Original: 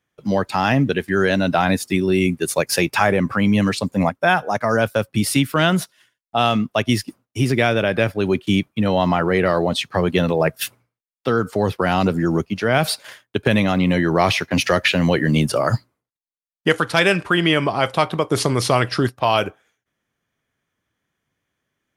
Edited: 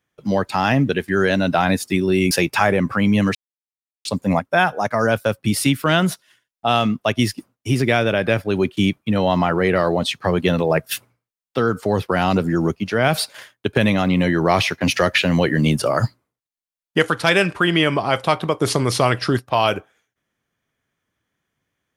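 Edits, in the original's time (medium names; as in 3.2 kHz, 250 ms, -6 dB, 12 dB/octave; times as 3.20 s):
2.31–2.71 s: delete
3.75 s: insert silence 0.70 s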